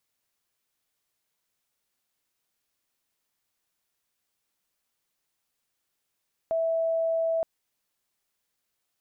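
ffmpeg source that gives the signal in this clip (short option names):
-f lavfi -i "aevalsrc='0.0708*sin(2*PI*656*t)':d=0.92:s=44100"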